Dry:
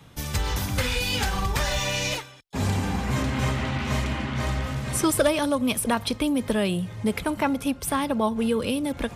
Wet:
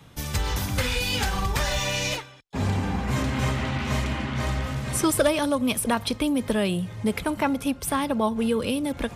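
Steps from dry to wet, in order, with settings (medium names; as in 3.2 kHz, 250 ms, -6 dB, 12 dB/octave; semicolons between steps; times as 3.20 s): 2.15–3.07 s: treble shelf 7.7 kHz -> 4.5 kHz -10 dB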